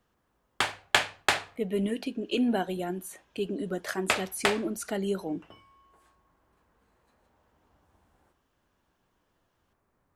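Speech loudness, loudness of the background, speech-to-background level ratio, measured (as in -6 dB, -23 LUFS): -32.0 LUFS, -29.0 LUFS, -3.0 dB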